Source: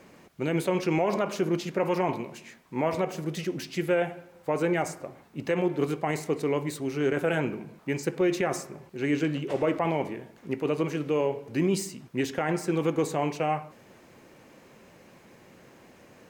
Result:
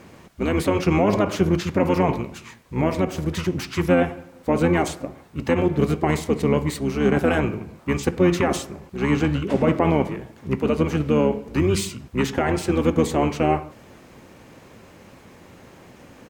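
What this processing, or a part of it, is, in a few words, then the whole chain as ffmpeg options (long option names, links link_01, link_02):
octave pedal: -filter_complex "[0:a]asplit=2[link_01][link_02];[link_02]asetrate=22050,aresample=44100,atempo=2,volume=-2dB[link_03];[link_01][link_03]amix=inputs=2:normalize=0,asettb=1/sr,asplit=3[link_04][link_05][link_06];[link_04]atrim=end=2.224[link_07];[link_05]atrim=start=2.22:end=3.16,asetpts=PTS-STARTPTS,afade=type=in:duration=0.004:curve=qsin,afade=type=out:start_time=0.936:duration=0.004:curve=qsin,equalizer=frequency=780:width=0.61:gain=-3.5[link_08];[link_06]atrim=start=3.156[link_09];[link_07][link_08]acrossfade=duration=0.004:curve1=hsin:curve2=qsin[link_10];[link_10][link_09]acrossfade=duration=0.004:curve1=qsin:curve2=hsin,volume=5dB"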